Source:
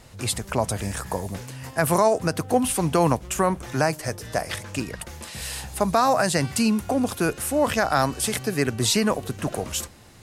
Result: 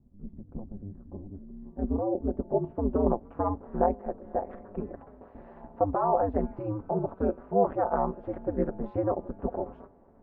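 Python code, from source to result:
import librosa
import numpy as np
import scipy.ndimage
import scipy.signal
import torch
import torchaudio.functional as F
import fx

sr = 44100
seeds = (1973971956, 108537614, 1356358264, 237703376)

y = scipy.signal.sosfilt(scipy.signal.butter(2, 1300.0, 'lowpass', fs=sr, output='sos'), x)
y = fx.low_shelf(y, sr, hz=110.0, db=-8.5)
y = y + 0.82 * np.pad(y, (int(6.5 * sr / 1000.0), 0))[:len(y)]
y = y * np.sin(2.0 * np.pi * 100.0 * np.arange(len(y)) / sr)
y = fx.filter_sweep_lowpass(y, sr, from_hz=180.0, to_hz=770.0, start_s=0.95, end_s=3.36, q=1.1)
y = F.gain(torch.from_numpy(y), -3.5).numpy()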